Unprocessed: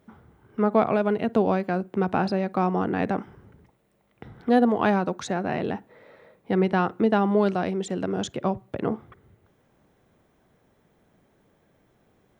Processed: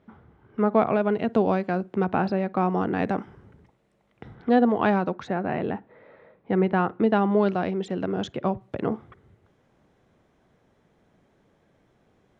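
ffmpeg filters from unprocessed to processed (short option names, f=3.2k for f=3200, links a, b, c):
-af "asetnsamples=n=441:p=0,asendcmd='1.13 lowpass f 6000;2.04 lowpass f 3300;2.7 lowpass f 7400;4.35 lowpass f 4100;5.14 lowpass f 2500;7 lowpass f 3900;8.61 lowpass f 7400',lowpass=3.6k"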